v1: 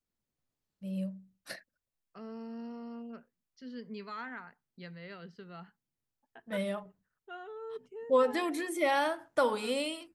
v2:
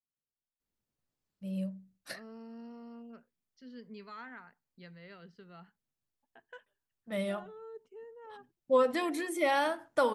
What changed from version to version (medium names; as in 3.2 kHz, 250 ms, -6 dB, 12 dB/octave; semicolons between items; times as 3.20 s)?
first voice: entry +0.60 s; second voice -5.0 dB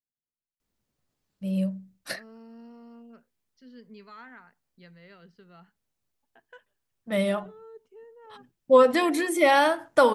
first voice +9.0 dB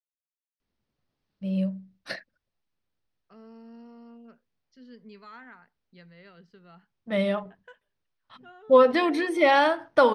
first voice: add Savitzky-Golay filter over 15 samples; second voice: entry +1.15 s